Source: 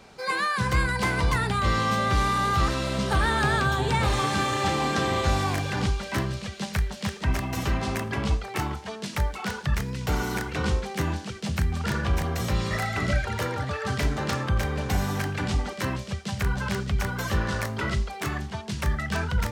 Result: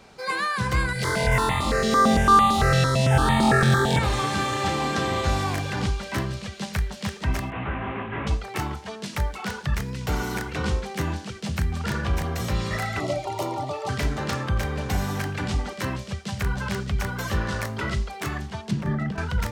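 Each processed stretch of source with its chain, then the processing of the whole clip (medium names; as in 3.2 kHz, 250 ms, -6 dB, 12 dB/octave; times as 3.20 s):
0.93–3.99 s: flutter echo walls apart 3.9 m, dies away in 1.3 s + stepped phaser 8.9 Hz 270–1500 Hz
7.50–8.27 s: one-bit delta coder 16 kbps, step -35 dBFS + peaking EQ 1.4 kHz +5.5 dB 2.5 oct + detune thickener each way 53 cents
13.00–13.89 s: high-pass 180 Hz 6 dB/octave + peaking EQ 510 Hz +10.5 dB 1.9 oct + static phaser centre 320 Hz, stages 8
18.71–19.18 s: high-pass 150 Hz 24 dB/octave + compressor with a negative ratio -32 dBFS, ratio -0.5 + tilt EQ -4 dB/octave
whole clip: none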